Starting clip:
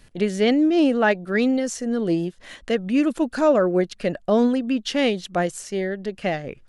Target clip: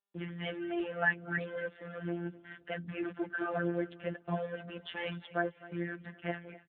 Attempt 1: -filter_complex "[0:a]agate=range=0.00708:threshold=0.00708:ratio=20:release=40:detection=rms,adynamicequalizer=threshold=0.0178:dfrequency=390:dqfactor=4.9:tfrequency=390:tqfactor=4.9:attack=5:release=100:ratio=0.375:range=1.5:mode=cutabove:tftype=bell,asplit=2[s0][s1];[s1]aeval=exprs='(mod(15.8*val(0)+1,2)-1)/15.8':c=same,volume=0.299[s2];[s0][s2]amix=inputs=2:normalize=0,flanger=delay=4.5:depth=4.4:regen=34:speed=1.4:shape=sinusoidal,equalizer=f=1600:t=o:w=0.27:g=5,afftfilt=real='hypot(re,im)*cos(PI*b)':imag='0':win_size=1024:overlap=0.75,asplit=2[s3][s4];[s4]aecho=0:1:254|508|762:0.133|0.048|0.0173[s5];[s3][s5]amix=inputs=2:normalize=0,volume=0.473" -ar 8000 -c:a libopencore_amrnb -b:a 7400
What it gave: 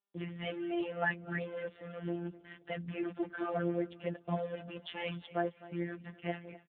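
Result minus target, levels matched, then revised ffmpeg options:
2 kHz band -3.5 dB
-filter_complex "[0:a]agate=range=0.00708:threshold=0.00708:ratio=20:release=40:detection=rms,adynamicequalizer=threshold=0.0178:dfrequency=390:dqfactor=4.9:tfrequency=390:tqfactor=4.9:attack=5:release=100:ratio=0.375:range=1.5:mode=cutabove:tftype=bell,asplit=2[s0][s1];[s1]aeval=exprs='(mod(15.8*val(0)+1,2)-1)/15.8':c=same,volume=0.299[s2];[s0][s2]amix=inputs=2:normalize=0,flanger=delay=4.5:depth=4.4:regen=34:speed=1.4:shape=sinusoidal,equalizer=f=1600:t=o:w=0.27:g=13.5,afftfilt=real='hypot(re,im)*cos(PI*b)':imag='0':win_size=1024:overlap=0.75,asplit=2[s3][s4];[s4]aecho=0:1:254|508|762:0.133|0.048|0.0173[s5];[s3][s5]amix=inputs=2:normalize=0,volume=0.473" -ar 8000 -c:a libopencore_amrnb -b:a 7400

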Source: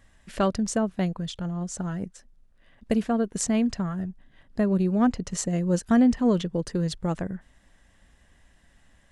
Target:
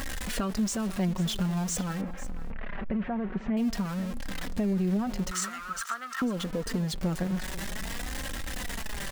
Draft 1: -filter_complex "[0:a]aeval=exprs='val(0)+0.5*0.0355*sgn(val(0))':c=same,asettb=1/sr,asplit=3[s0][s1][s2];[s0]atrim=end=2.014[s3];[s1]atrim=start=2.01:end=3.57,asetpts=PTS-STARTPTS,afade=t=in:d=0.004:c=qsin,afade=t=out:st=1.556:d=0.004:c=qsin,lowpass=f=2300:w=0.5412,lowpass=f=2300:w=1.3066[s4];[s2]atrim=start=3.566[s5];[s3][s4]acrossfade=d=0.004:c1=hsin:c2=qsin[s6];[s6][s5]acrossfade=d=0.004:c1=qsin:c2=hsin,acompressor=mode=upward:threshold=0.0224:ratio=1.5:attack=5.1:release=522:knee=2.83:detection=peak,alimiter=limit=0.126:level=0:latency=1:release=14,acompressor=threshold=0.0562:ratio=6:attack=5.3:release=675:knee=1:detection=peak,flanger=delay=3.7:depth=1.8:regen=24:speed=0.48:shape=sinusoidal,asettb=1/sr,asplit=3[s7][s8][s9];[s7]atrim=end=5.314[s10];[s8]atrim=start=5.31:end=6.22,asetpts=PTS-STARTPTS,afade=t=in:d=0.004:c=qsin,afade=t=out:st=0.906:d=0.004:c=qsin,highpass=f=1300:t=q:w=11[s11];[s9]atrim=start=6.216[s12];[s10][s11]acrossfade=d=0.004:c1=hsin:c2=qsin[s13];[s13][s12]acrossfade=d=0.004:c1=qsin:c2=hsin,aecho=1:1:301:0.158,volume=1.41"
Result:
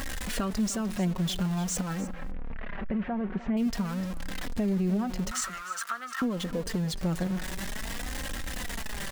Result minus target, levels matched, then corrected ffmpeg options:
echo 194 ms early
-filter_complex "[0:a]aeval=exprs='val(0)+0.5*0.0355*sgn(val(0))':c=same,asettb=1/sr,asplit=3[s0][s1][s2];[s0]atrim=end=2.014[s3];[s1]atrim=start=2.01:end=3.57,asetpts=PTS-STARTPTS,afade=t=in:d=0.004:c=qsin,afade=t=out:st=1.556:d=0.004:c=qsin,lowpass=f=2300:w=0.5412,lowpass=f=2300:w=1.3066[s4];[s2]atrim=start=3.566[s5];[s3][s4]acrossfade=d=0.004:c1=hsin:c2=qsin[s6];[s6][s5]acrossfade=d=0.004:c1=qsin:c2=hsin,acompressor=mode=upward:threshold=0.0224:ratio=1.5:attack=5.1:release=522:knee=2.83:detection=peak,alimiter=limit=0.126:level=0:latency=1:release=14,acompressor=threshold=0.0562:ratio=6:attack=5.3:release=675:knee=1:detection=peak,flanger=delay=3.7:depth=1.8:regen=24:speed=0.48:shape=sinusoidal,asettb=1/sr,asplit=3[s7][s8][s9];[s7]atrim=end=5.314[s10];[s8]atrim=start=5.31:end=6.22,asetpts=PTS-STARTPTS,afade=t=in:d=0.004:c=qsin,afade=t=out:st=0.906:d=0.004:c=qsin,highpass=f=1300:t=q:w=11[s11];[s9]atrim=start=6.216[s12];[s10][s11]acrossfade=d=0.004:c1=hsin:c2=qsin[s13];[s13][s12]acrossfade=d=0.004:c1=qsin:c2=hsin,aecho=1:1:495:0.158,volume=1.41"

